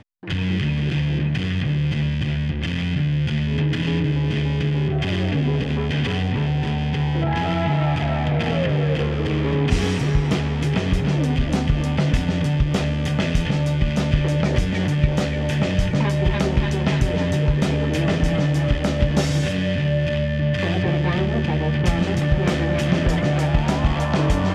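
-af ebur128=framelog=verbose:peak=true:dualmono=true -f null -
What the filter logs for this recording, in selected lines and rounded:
Integrated loudness:
  I:         -18.2 LUFS
  Threshold: -28.2 LUFS
Loudness range:
  LRA:         1.6 LU
  Threshold: -38.2 LUFS
  LRA low:   -19.1 LUFS
  LRA high:  -17.5 LUFS
True peak:
  Peak:       -3.1 dBFS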